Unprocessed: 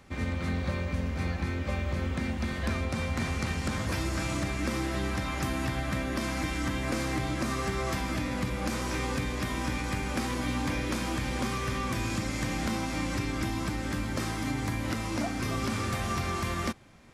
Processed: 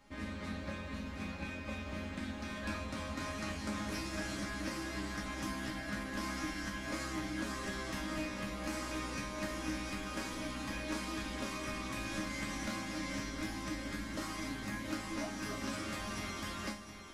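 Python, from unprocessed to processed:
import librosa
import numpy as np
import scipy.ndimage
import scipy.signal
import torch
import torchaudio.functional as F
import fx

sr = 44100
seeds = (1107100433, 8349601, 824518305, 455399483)

y = fx.resonator_bank(x, sr, root=56, chord='sus4', decay_s=0.31)
y = y + 10.0 ** (-9.5 / 20.0) * np.pad(y, (int(711 * sr / 1000.0), 0))[:len(y)]
y = fx.doppler_dist(y, sr, depth_ms=0.12)
y = y * librosa.db_to_amplitude(11.0)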